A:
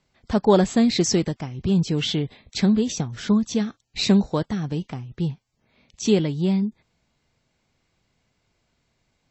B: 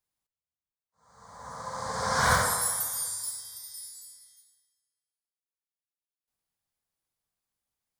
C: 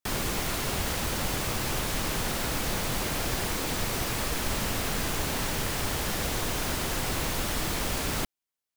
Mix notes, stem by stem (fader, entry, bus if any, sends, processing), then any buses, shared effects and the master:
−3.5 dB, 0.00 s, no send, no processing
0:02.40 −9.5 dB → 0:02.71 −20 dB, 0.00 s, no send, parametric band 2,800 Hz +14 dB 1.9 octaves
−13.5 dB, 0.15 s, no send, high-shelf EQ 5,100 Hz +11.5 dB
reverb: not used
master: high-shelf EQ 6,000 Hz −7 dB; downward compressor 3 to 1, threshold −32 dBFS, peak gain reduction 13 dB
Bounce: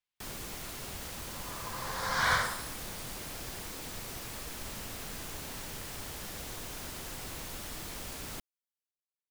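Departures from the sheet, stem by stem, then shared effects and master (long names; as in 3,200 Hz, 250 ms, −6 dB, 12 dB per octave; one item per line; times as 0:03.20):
stem A: muted
master: missing downward compressor 3 to 1, threshold −32 dBFS, peak gain reduction 13 dB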